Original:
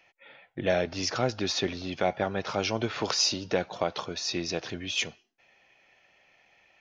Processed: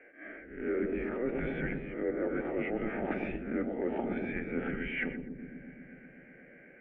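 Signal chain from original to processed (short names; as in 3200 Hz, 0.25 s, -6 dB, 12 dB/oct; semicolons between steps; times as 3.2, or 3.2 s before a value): spectral swells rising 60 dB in 0.39 s; in parallel at -9 dB: sine folder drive 7 dB, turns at -9 dBFS; on the sum: bell 210 Hz +9.5 dB 2.2 oct; fixed phaser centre 1300 Hz, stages 6; narrowing echo 0.124 s, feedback 84%, band-pass 380 Hz, level -7.5 dB; mistuned SSB -240 Hz 340–2300 Hz; reverse; compressor 5:1, threshold -31 dBFS, peak gain reduction 15.5 dB; reverse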